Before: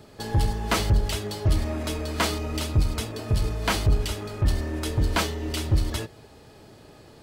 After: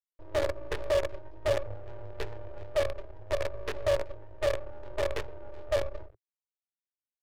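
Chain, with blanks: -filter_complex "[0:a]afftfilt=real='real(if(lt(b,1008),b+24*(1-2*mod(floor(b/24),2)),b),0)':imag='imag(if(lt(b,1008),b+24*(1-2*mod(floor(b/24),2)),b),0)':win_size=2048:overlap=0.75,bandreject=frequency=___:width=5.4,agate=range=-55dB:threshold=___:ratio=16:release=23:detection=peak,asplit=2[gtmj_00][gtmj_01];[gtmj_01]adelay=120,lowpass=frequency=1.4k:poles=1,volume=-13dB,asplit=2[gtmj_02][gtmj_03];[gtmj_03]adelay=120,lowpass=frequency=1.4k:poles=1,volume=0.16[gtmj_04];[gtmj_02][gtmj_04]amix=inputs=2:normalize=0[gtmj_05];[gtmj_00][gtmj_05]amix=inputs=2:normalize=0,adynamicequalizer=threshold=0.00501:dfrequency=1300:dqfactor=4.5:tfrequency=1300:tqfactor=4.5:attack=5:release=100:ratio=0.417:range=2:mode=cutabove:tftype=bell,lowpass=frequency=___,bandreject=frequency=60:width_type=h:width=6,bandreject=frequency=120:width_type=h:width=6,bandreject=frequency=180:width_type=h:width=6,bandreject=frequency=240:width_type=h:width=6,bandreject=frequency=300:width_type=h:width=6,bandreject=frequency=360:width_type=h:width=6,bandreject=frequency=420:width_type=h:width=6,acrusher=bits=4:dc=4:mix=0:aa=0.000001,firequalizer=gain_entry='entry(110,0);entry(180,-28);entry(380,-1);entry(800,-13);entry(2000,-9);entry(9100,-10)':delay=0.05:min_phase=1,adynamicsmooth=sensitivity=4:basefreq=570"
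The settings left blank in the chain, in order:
730, -48dB, 4.2k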